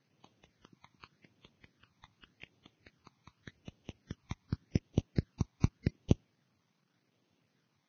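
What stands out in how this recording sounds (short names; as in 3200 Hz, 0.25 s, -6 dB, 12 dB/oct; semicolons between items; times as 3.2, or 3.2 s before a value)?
aliases and images of a low sample rate 5500 Hz, jitter 0%; phasing stages 12, 0.86 Hz, lowest notch 490–1700 Hz; a quantiser's noise floor 12-bit, dither none; Vorbis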